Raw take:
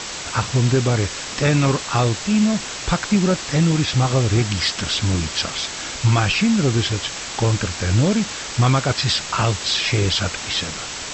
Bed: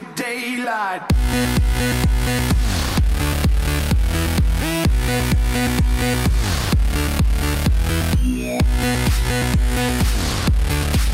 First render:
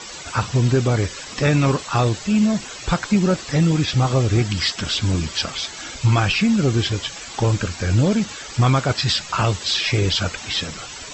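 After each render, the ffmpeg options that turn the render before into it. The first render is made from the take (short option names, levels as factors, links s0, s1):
-af "afftdn=nr=13:nf=-31"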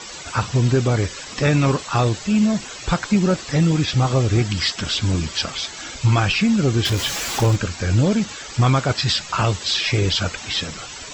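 -filter_complex "[0:a]asettb=1/sr,asplit=3[s0][s1][s2];[s0]atrim=end=6.854[s3];[s1]atrim=start=6.85:end=7.56,asetpts=PTS-STARTPTS,afade=t=in:d=0.004:c=qsin,afade=t=out:st=0.706:d=0.004:c=qsin,aeval=exprs='val(0)+0.5*0.0708*sgn(val(0))':c=same[s4];[s2]atrim=start=7.556[s5];[s3][s4]acrossfade=d=0.004:c1=hsin:c2=qsin[s6];[s6][s5]acrossfade=d=0.004:c1=qsin:c2=hsin"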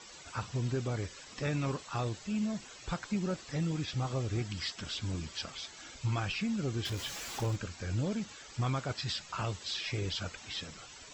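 -af "volume=0.158"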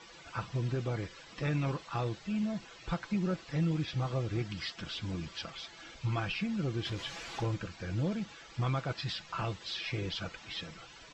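-af "lowpass=4200,aecho=1:1:6:0.38"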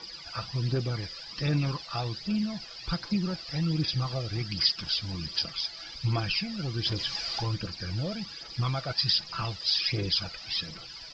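-af "aphaser=in_gain=1:out_gain=1:delay=1.7:decay=0.48:speed=1.3:type=triangular,lowpass=f=4900:t=q:w=13"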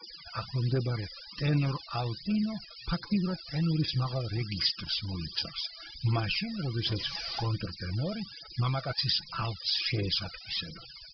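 -af "afftfilt=real='re*gte(hypot(re,im),0.00891)':imag='im*gte(hypot(re,im),0.00891)':win_size=1024:overlap=0.75,lowpass=4500"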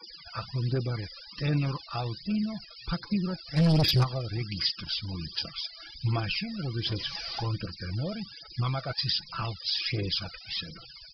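-filter_complex "[0:a]asplit=3[s0][s1][s2];[s0]afade=t=out:st=3.56:d=0.02[s3];[s1]aeval=exprs='0.119*sin(PI/2*2.24*val(0)/0.119)':c=same,afade=t=in:st=3.56:d=0.02,afade=t=out:st=4.03:d=0.02[s4];[s2]afade=t=in:st=4.03:d=0.02[s5];[s3][s4][s5]amix=inputs=3:normalize=0"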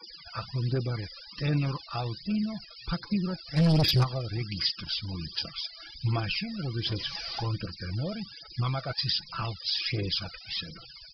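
-af anull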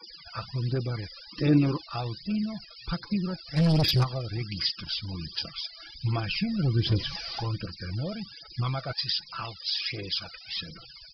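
-filter_complex "[0:a]asettb=1/sr,asplit=3[s0][s1][s2];[s0]atrim=end=1.284[s3];[s1]atrim=start=1.28:end=1.85,asetpts=PTS-STARTPTS,afade=t=in:d=0.004:c=qsin,afade=t=out:st=0.566:d=0.004:c=qsin,equalizer=f=330:w=1.5:g=14[s4];[s2]atrim=start=1.846[s5];[s3][s4]acrossfade=d=0.004:c1=hsin:c2=qsin[s6];[s6][s5]acrossfade=d=0.004:c1=qsin:c2=hsin,asettb=1/sr,asplit=3[s7][s8][s9];[s7]atrim=end=6.344[s10];[s8]atrim=start=6.34:end=7.17,asetpts=PTS-STARTPTS,afade=t=in:d=0.004:c=qsin,afade=t=out:st=0.826:d=0.004:c=qsin,lowshelf=f=440:g=9[s11];[s9]atrim=start=7.166[s12];[s10][s11]acrossfade=d=0.004:c1=hsin:c2=qsin[s13];[s13][s12]acrossfade=d=0.004:c1=qsin:c2=hsin,asettb=1/sr,asplit=3[s14][s15][s16];[s14]atrim=end=8.934[s17];[s15]atrim=start=8.93:end=10.56,asetpts=PTS-STARTPTS,afade=t=in:d=0.004:c=qsin,afade=t=out:st=1.626:d=0.004:c=qsin,lowshelf=f=360:g=-9[s18];[s16]atrim=start=10.556[s19];[s17][s18]acrossfade=d=0.004:c1=hsin:c2=qsin[s20];[s20][s19]acrossfade=d=0.004:c1=qsin:c2=hsin"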